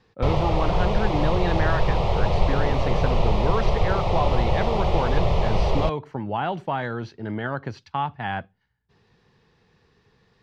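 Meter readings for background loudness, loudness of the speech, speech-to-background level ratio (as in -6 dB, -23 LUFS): -24.5 LUFS, -29.0 LUFS, -4.5 dB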